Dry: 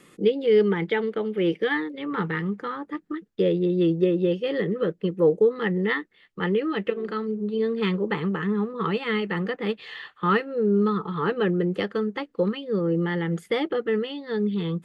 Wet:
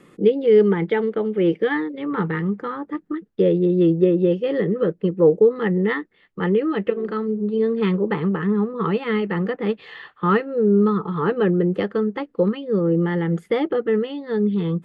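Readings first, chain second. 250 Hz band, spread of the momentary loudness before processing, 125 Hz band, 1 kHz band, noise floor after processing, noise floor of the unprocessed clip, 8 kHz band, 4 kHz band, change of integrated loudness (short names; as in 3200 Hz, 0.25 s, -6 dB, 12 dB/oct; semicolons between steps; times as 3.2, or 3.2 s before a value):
+5.0 dB, 8 LU, +5.0 dB, +2.5 dB, -57 dBFS, -59 dBFS, n/a, -3.0 dB, +4.5 dB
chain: high shelf 2200 Hz -12 dB; gain +5 dB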